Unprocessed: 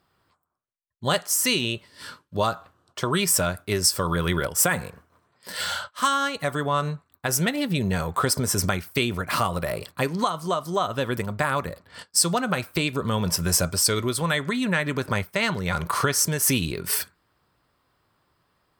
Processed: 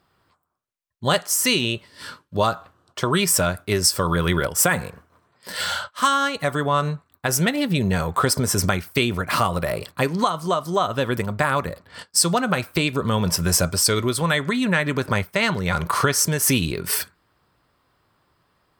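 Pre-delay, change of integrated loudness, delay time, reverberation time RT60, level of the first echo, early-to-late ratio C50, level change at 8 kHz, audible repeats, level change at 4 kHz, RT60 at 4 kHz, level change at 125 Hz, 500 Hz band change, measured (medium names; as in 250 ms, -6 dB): no reverb, +3.0 dB, no echo, no reverb, no echo, no reverb, +2.0 dB, no echo, +2.5 dB, no reverb, +3.5 dB, +3.5 dB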